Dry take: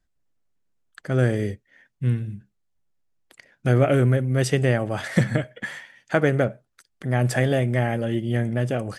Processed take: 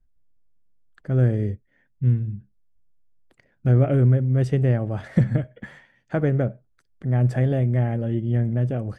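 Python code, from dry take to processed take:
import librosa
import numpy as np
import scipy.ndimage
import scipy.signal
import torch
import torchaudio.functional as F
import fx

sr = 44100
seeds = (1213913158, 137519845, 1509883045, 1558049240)

y = fx.tilt_eq(x, sr, slope=-3.5)
y = y * 10.0 ** (-7.5 / 20.0)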